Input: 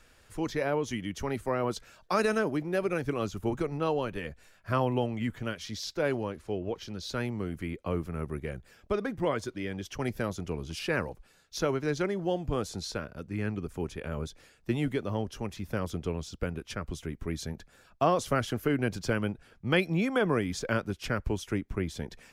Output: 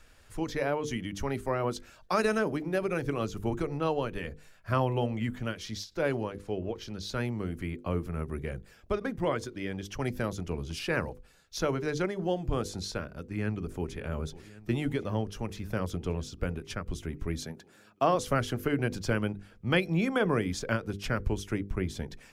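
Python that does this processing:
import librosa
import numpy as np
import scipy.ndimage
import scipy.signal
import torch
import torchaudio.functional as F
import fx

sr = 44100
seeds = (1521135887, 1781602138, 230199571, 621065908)

y = fx.echo_throw(x, sr, start_s=13.14, length_s=0.8, ms=550, feedback_pct=80, wet_db=-17.5)
y = fx.highpass(y, sr, hz=170.0, slope=12, at=(17.43, 18.15))
y = fx.low_shelf(y, sr, hz=93.0, db=6.0)
y = fx.hum_notches(y, sr, base_hz=50, count=10)
y = fx.end_taper(y, sr, db_per_s=240.0)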